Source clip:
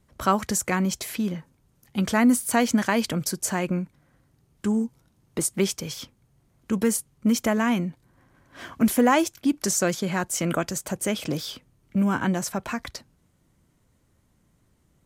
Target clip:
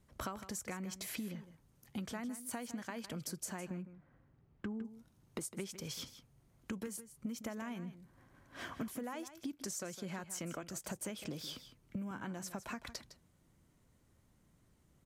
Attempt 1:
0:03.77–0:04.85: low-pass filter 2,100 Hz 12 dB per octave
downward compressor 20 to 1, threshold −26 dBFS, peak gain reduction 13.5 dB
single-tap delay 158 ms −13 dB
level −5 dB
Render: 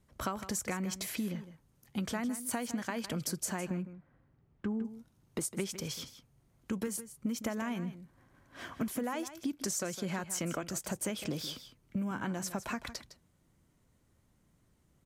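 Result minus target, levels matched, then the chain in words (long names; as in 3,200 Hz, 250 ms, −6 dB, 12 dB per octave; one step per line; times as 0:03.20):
downward compressor: peak gain reduction −7 dB
0:03.77–0:04.85: low-pass filter 2,100 Hz 12 dB per octave
downward compressor 20 to 1, threshold −33.5 dBFS, peak gain reduction 20.5 dB
single-tap delay 158 ms −13 dB
level −5 dB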